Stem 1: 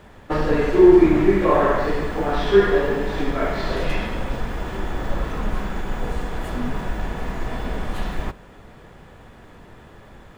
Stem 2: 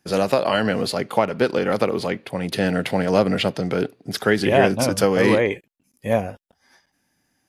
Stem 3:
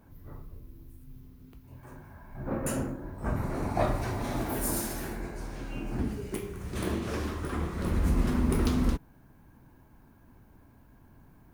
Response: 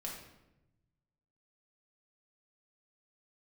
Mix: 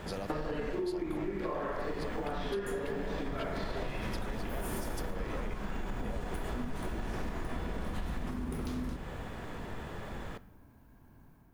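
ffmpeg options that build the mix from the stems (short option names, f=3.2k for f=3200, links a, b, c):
-filter_complex "[0:a]acompressor=threshold=-29dB:ratio=3,volume=2dB,asplit=2[a][b];[b]volume=-12.5dB[c];[1:a]acompressor=threshold=-25dB:ratio=6,volume=-10.5dB[d];[2:a]volume=-9.5dB,asplit=2[e][f];[f]volume=-5dB[g];[d][e]amix=inputs=2:normalize=0,dynaudnorm=f=140:g=5:m=6dB,alimiter=level_in=1.5dB:limit=-24dB:level=0:latency=1,volume=-1.5dB,volume=0dB[h];[3:a]atrim=start_sample=2205[i];[c][g]amix=inputs=2:normalize=0[j];[j][i]afir=irnorm=-1:irlink=0[k];[a][h][k]amix=inputs=3:normalize=0,acompressor=threshold=-33dB:ratio=5"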